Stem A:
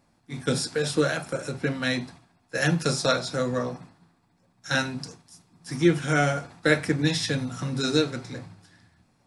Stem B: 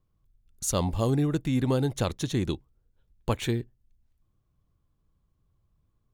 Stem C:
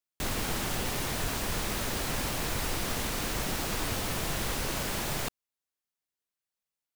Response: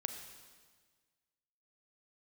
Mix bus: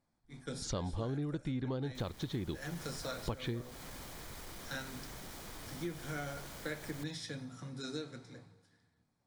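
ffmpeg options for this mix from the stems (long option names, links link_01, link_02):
-filter_complex "[0:a]volume=-18.5dB,asplit=2[link_01][link_02];[link_02]volume=-8dB[link_03];[1:a]lowpass=frequency=4600:width=0.5412,lowpass=frequency=4600:width=1.3066,agate=range=-33dB:threshold=-58dB:ratio=3:detection=peak,volume=0.5dB[link_04];[2:a]asoftclip=type=tanh:threshold=-27.5dB,adelay=1750,volume=-16.5dB,asplit=2[link_05][link_06];[link_06]volume=-7.5dB[link_07];[3:a]atrim=start_sample=2205[link_08];[link_03][link_07]amix=inputs=2:normalize=0[link_09];[link_09][link_08]afir=irnorm=-1:irlink=0[link_10];[link_01][link_04][link_05][link_10]amix=inputs=4:normalize=0,bandreject=frequency=2700:width=9.6,acompressor=threshold=-36dB:ratio=4"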